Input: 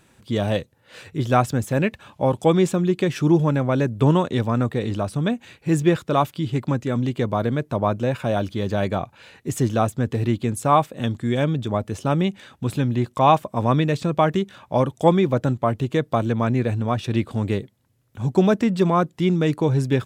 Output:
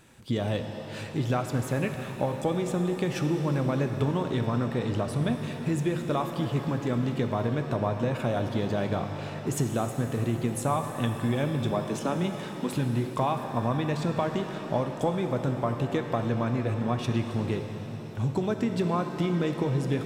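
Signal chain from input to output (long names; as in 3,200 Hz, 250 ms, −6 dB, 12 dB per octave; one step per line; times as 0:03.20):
0:11.71–0:12.72: Butterworth high-pass 160 Hz 72 dB per octave
downward compressor, threshold −25 dBFS, peak gain reduction 14 dB
reverb with rising layers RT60 3.7 s, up +7 semitones, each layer −8 dB, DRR 5.5 dB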